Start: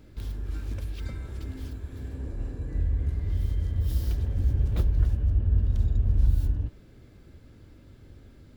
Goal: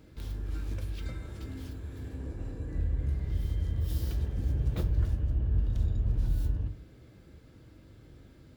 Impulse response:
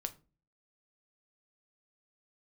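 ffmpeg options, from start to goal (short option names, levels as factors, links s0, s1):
-filter_complex "[0:a]highpass=f=73:p=1[s0];[1:a]atrim=start_sample=2205[s1];[s0][s1]afir=irnorm=-1:irlink=0"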